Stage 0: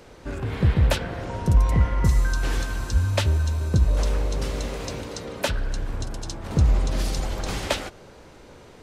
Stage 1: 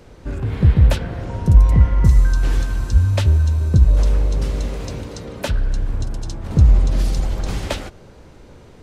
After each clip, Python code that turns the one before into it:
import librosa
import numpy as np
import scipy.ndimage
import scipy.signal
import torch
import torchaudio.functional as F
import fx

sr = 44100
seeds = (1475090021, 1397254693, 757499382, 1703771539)

y = fx.low_shelf(x, sr, hz=260.0, db=9.5)
y = y * librosa.db_to_amplitude(-1.5)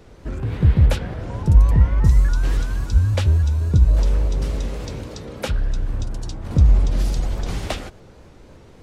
y = fx.vibrato_shape(x, sr, shape='saw_up', rate_hz=3.5, depth_cents=160.0)
y = y * librosa.db_to_amplitude(-2.0)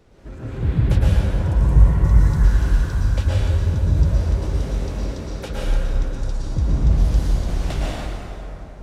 y = fx.rev_plate(x, sr, seeds[0], rt60_s=3.2, hf_ratio=0.55, predelay_ms=100, drr_db=-7.5)
y = y * librosa.db_to_amplitude(-8.0)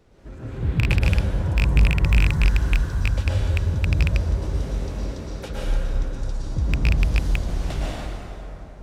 y = fx.rattle_buzz(x, sr, strikes_db=-11.0, level_db=-5.0)
y = np.clip(y, -10.0 ** (-7.0 / 20.0), 10.0 ** (-7.0 / 20.0))
y = y * librosa.db_to_amplitude(-3.0)